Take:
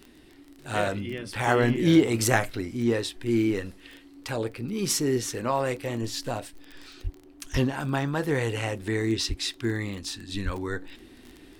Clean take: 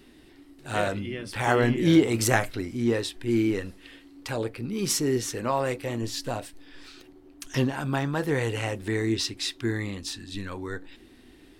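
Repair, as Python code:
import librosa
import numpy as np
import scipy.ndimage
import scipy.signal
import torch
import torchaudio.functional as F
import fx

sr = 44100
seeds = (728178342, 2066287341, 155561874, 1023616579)

y = fx.fix_declick_ar(x, sr, threshold=6.5)
y = fx.fix_deplosive(y, sr, at_s=(7.03, 7.52, 9.28, 10.44))
y = fx.fix_level(y, sr, at_s=10.29, step_db=-3.0)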